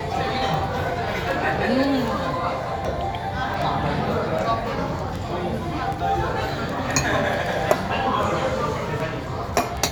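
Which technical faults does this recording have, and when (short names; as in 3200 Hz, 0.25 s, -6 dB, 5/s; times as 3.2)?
tick
3.54 gap 2.5 ms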